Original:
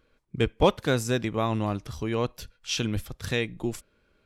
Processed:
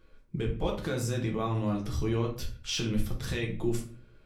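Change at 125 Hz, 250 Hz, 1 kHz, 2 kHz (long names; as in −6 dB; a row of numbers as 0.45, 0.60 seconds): −1.0, −2.5, −7.5, −6.5 decibels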